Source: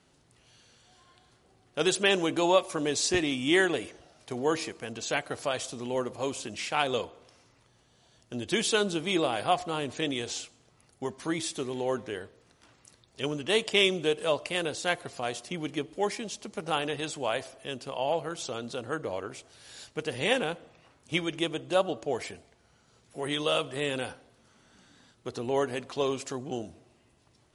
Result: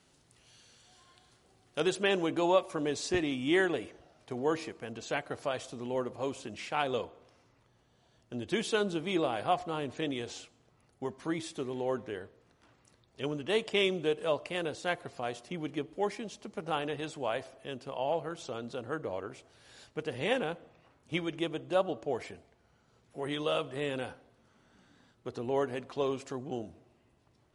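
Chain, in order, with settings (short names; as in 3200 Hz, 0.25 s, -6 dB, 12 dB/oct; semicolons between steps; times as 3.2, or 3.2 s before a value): high shelf 3200 Hz +4.5 dB, from 1.8 s -10 dB; gain -2.5 dB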